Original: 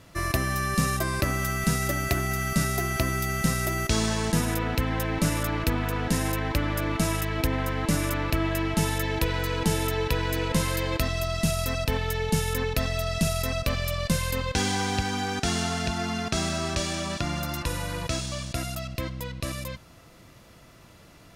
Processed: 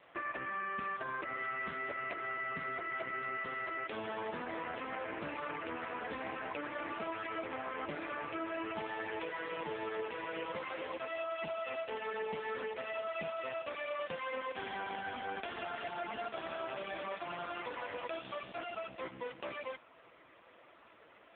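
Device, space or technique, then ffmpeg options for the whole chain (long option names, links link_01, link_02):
voicemail: -af "highpass=430,lowpass=3000,acompressor=threshold=-35dB:ratio=10,volume=1.5dB" -ar 8000 -c:a libopencore_amrnb -b:a 5150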